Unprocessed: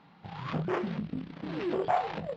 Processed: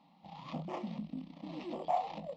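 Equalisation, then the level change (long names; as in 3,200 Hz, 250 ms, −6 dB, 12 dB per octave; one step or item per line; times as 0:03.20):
low-shelf EQ 72 Hz −7.5 dB
phaser with its sweep stopped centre 410 Hz, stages 6
−4.0 dB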